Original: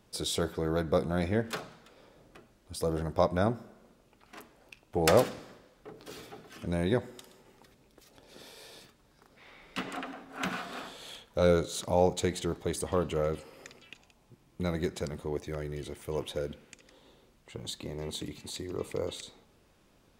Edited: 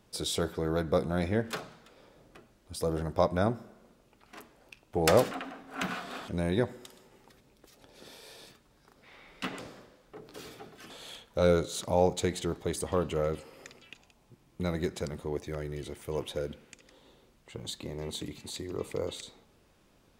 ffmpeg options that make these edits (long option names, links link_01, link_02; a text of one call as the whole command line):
ffmpeg -i in.wav -filter_complex "[0:a]asplit=5[link_01][link_02][link_03][link_04][link_05];[link_01]atrim=end=5.312[link_06];[link_02]atrim=start=9.928:end=10.902[link_07];[link_03]atrim=start=6.618:end=9.932[link_08];[link_04]atrim=start=5.308:end=6.622[link_09];[link_05]atrim=start=10.898[link_10];[link_06][link_07]acrossfade=duration=0.004:curve1=hsin:curve2=hsin[link_11];[link_11][link_08]acrossfade=duration=0.004:curve1=hsin:curve2=hsin[link_12];[link_12][link_09]acrossfade=duration=0.004:curve1=hsin:curve2=hsin[link_13];[link_13][link_10]acrossfade=duration=0.004:curve1=hsin:curve2=hsin" out.wav